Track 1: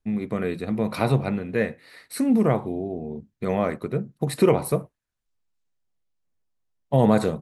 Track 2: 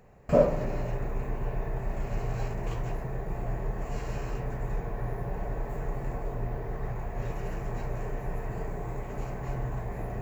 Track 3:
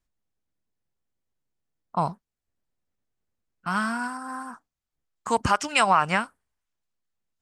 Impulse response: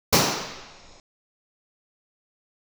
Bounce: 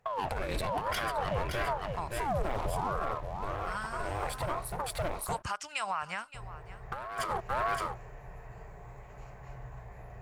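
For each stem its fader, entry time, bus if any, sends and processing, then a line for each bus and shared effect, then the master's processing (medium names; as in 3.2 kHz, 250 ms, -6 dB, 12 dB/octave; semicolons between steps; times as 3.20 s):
+1.5 dB, 0.00 s, bus A, no send, echo send -15 dB, high-pass 72 Hz 12 dB/octave; waveshaping leveller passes 3; ring modulator with a swept carrier 510 Hz, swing 80%, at 0.98 Hz; auto duck -23 dB, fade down 0.95 s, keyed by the third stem
-12.5 dB, 0.00 s, muted 5.09–6.34 s, bus A, no send, no echo send, high-pass 44 Hz; treble shelf 10 kHz -10 dB
-10.0 dB, 0.00 s, no bus, no send, echo send -18 dB, none
bus A: 0.0 dB, compressor with a negative ratio -22 dBFS, ratio -0.5; peak limiter -15.5 dBFS, peak gain reduction 9 dB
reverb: none
echo: delay 568 ms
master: peaking EQ 270 Hz -14.5 dB 1.5 oct; peak limiter -23 dBFS, peak gain reduction 8 dB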